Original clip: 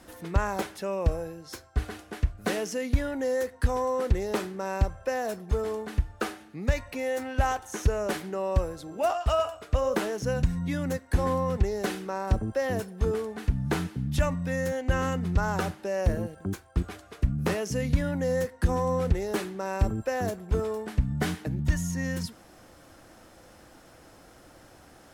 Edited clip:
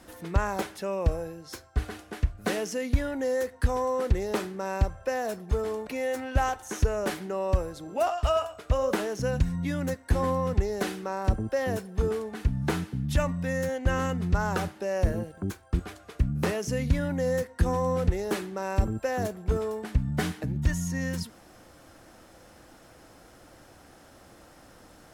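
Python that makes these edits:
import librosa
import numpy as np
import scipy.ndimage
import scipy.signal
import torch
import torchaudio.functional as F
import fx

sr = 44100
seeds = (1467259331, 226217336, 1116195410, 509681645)

y = fx.edit(x, sr, fx.cut(start_s=5.87, length_s=1.03), tone=tone)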